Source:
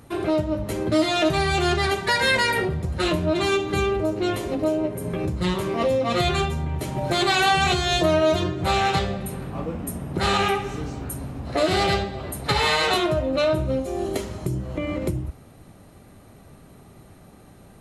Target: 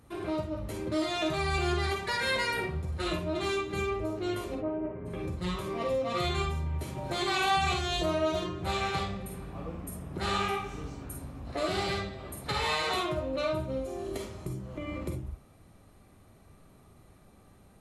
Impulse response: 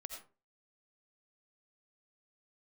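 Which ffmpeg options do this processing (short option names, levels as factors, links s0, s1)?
-filter_complex "[0:a]asplit=3[s0][s1][s2];[s0]afade=t=out:st=4.55:d=0.02[s3];[s1]lowpass=f=2100:w=0.5412,lowpass=f=2100:w=1.3066,afade=t=in:st=4.55:d=0.02,afade=t=out:st=5.05:d=0.02[s4];[s2]afade=t=in:st=5.05:d=0.02[s5];[s3][s4][s5]amix=inputs=3:normalize=0[s6];[1:a]atrim=start_sample=2205,asetrate=79380,aresample=44100[s7];[s6][s7]afir=irnorm=-1:irlink=0"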